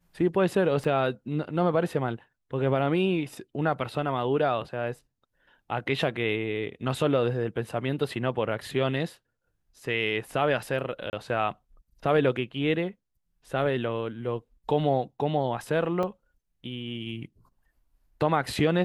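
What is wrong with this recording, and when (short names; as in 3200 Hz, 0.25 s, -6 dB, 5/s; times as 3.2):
0.84 gap 3.6 ms
11.1–11.13 gap 29 ms
16.03 gap 4.3 ms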